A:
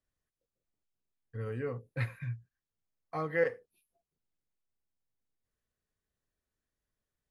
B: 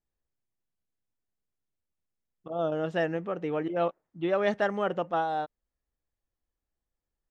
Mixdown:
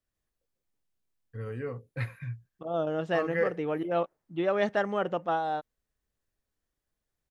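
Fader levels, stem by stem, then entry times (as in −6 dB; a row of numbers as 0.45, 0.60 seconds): +0.5, −0.5 decibels; 0.00, 0.15 seconds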